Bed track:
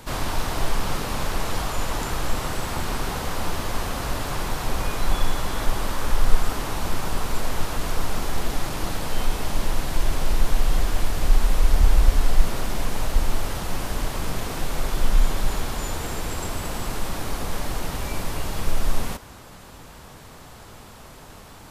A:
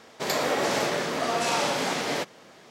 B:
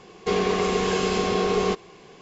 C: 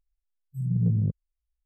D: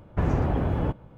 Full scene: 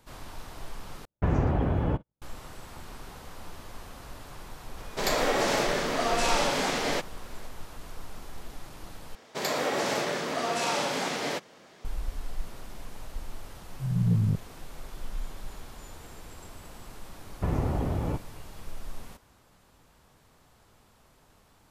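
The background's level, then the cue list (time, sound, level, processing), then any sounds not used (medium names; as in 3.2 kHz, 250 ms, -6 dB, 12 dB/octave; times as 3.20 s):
bed track -17 dB
1.05 s: replace with D -1 dB + gate -41 dBFS, range -40 dB
4.77 s: add A -0.5 dB
9.15 s: replace with A -3 dB
13.25 s: add C -0.5 dB
17.25 s: add D -4 dB + band-stop 1.6 kHz, Q 8.2
not used: B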